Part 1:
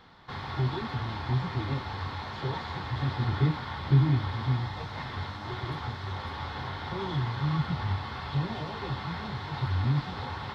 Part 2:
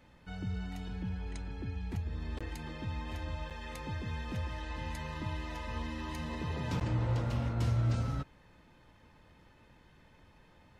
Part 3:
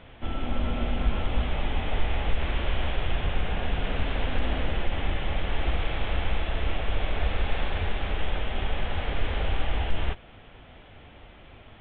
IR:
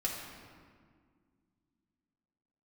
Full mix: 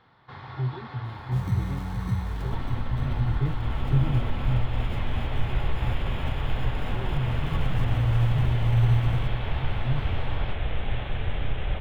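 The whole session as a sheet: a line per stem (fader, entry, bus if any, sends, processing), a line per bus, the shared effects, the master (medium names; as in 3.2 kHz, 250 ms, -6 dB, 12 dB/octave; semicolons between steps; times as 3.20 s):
-4.0 dB, 0.00 s, no bus, no send, no echo send, tone controls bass -6 dB, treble -12 dB
+1.0 dB, 1.05 s, bus A, no send, echo send -21.5 dB, sample-and-hold 22×
-2.0 dB, 2.30 s, bus A, no send, echo send -3.5 dB, none
bus A: 0.0 dB, bass shelf 190 Hz +8 dB; compression, threshold -25 dBFS, peak gain reduction 14.5 dB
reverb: none
echo: feedback delay 1094 ms, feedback 33%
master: peaking EQ 120 Hz +13 dB 0.45 oct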